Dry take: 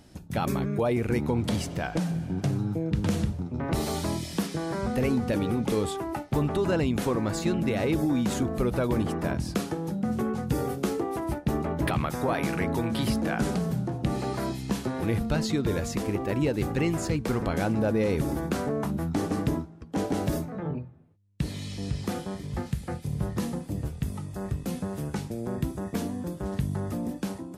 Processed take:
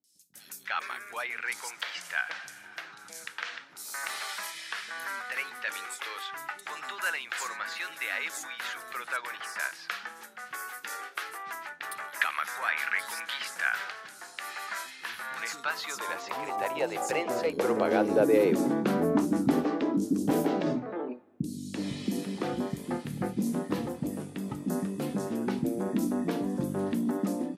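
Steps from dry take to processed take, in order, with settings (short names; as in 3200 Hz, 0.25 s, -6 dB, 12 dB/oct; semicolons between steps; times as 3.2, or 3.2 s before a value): high-pass sweep 1600 Hz -> 260 Hz, 14.82–18.57; three bands offset in time lows, highs, mids 40/340 ms, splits 310/5100 Hz; gain +1 dB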